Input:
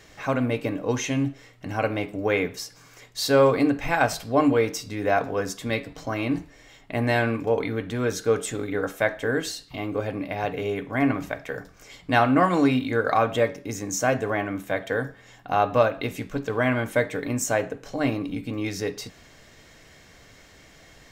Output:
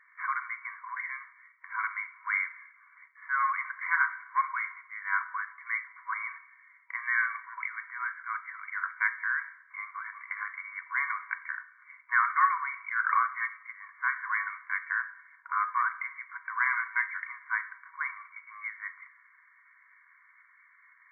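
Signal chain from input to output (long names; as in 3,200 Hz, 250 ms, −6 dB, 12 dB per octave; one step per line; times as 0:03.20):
leveller curve on the samples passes 1
brick-wall band-pass 960–2,300 Hz
four-comb reverb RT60 1.1 s, combs from 31 ms, DRR 16 dB
level −2 dB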